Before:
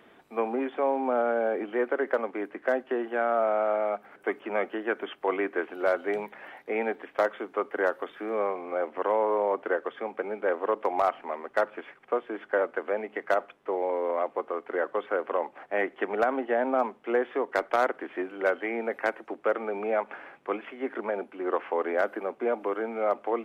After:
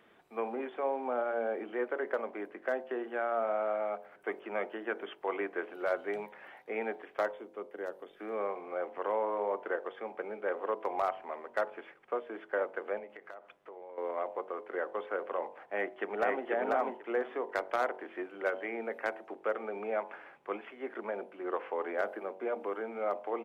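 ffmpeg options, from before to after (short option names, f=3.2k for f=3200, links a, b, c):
-filter_complex "[0:a]asettb=1/sr,asplit=3[a][b][c];[a]atrim=end=7.314[d];[b]atrim=start=7.31:end=8.2,asetpts=PTS-STARTPTS,afade=t=in:d=0.004:c=qsin,afade=t=out:st=0.886:d=0.004:c=qsin,equalizer=f=1.3k:w=0.47:g=-11.5[e];[c]atrim=start=8.196[f];[d][e]acrossfade=d=0.004:c1=hsin:c2=qsin[g];[g][f]acrossfade=d=0.004:c1=qsin:c2=hsin,asettb=1/sr,asplit=3[h][i][j];[h]atrim=end=12.984[k];[i]atrim=start=12.98:end=13.98,asetpts=PTS-STARTPTS,afade=t=in:d=0.004:c=qsin,afade=t=out:st=0.996:d=0.004:c=qsin,acompressor=threshold=-39dB:ratio=5:attack=3.2:release=140:knee=1:detection=peak[l];[j]atrim=start=13.976[m];[k][l]acrossfade=d=0.004:c1=hsin:c2=qsin[n];[n][m]acrossfade=d=0.004:c1=qsin:c2=hsin,asplit=2[o][p];[p]afade=t=in:st=15.68:d=0.01,afade=t=out:st=16.47:d=0.01,aecho=0:1:490|980|1470:0.841395|0.126209|0.0189314[q];[o][q]amix=inputs=2:normalize=0,equalizer=f=270:w=5.4:g=-5.5,bandreject=f=47.19:t=h:w=4,bandreject=f=94.38:t=h:w=4,bandreject=f=141.57:t=h:w=4,bandreject=f=188.76:t=h:w=4,bandreject=f=235.95:t=h:w=4,bandreject=f=283.14:t=h:w=4,bandreject=f=330.33:t=h:w=4,bandreject=f=377.52:t=h:w=4,bandreject=f=424.71:t=h:w=4,bandreject=f=471.9:t=h:w=4,bandreject=f=519.09:t=h:w=4,bandreject=f=566.28:t=h:w=4,bandreject=f=613.47:t=h:w=4,bandreject=f=660.66:t=h:w=4,bandreject=f=707.85:t=h:w=4,bandreject=f=755.04:t=h:w=4,bandreject=f=802.23:t=h:w=4,bandreject=f=849.42:t=h:w=4,bandreject=f=896.61:t=h:w=4,bandreject=f=943.8:t=h:w=4,bandreject=f=990.99:t=h:w=4,bandreject=f=1.03818k:t=h:w=4,volume=-6dB"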